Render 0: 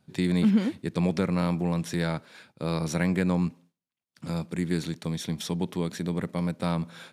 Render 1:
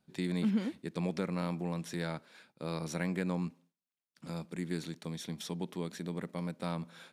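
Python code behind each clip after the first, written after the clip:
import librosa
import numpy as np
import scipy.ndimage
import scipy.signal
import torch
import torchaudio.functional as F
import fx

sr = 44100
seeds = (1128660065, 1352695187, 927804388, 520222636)

y = fx.peak_eq(x, sr, hz=100.0, db=-12.0, octaves=0.69)
y = y * 10.0 ** (-7.5 / 20.0)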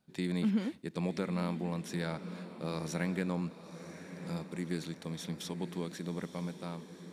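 y = fx.fade_out_tail(x, sr, length_s=0.87)
y = fx.echo_diffused(y, sr, ms=1025, feedback_pct=50, wet_db=-11.5)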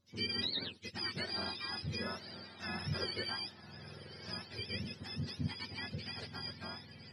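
y = fx.octave_mirror(x, sr, pivot_hz=920.0)
y = y * 10.0 ** (-1.0 / 20.0)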